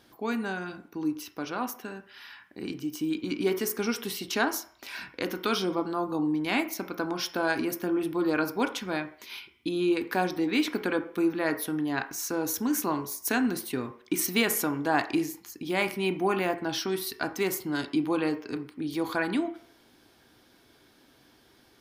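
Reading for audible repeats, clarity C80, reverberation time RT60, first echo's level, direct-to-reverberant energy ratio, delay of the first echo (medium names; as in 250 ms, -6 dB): no echo, 16.5 dB, 0.55 s, no echo, 7.0 dB, no echo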